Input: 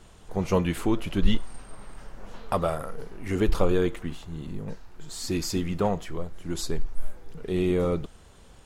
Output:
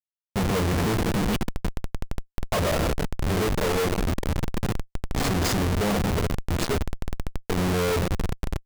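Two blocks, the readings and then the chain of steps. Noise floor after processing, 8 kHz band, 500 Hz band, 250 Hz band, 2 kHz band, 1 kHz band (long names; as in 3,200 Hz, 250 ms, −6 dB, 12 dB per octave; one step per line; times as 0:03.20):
−81 dBFS, +5.5 dB, +1.0 dB, +1.5 dB, +8.5 dB, +4.5 dB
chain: coupled-rooms reverb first 0.22 s, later 4.6 s, from −21 dB, DRR −7 dB
comparator with hysteresis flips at −24 dBFS
level −2.5 dB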